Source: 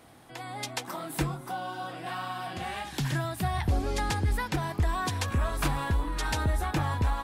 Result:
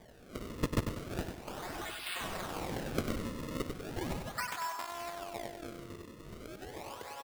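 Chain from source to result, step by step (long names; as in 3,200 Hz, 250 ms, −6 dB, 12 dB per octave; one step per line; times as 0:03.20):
0:04.79–0:06.04: samples sorted by size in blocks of 128 samples
first difference
in parallel at −1 dB: downward compressor, threshold −47 dBFS, peak gain reduction 16.5 dB
on the sum: band-pass filter sweep 4,300 Hz → 470 Hz, 0:02.85–0:05.69
sample-and-hold swept by an LFO 32×, swing 160% 0.37 Hz
on a send: repeating echo 96 ms, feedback 44%, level −7 dB
on the sum: level +12.5 dB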